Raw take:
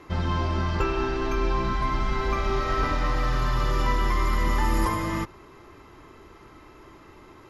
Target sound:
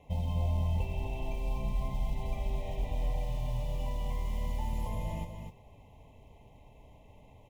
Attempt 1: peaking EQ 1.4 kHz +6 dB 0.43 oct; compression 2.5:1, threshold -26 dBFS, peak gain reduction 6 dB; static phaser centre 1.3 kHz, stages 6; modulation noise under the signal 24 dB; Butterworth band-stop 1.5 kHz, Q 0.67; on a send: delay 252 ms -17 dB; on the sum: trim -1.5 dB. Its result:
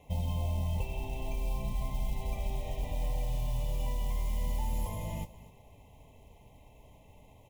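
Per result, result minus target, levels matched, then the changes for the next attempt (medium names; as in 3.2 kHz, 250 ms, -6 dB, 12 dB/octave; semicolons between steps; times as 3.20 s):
echo-to-direct -10.5 dB; 8 kHz band +7.0 dB
change: delay 252 ms -6.5 dB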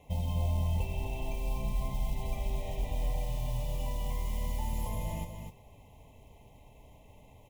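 8 kHz band +7.0 dB
add after Butterworth band-stop: treble shelf 6.2 kHz -11.5 dB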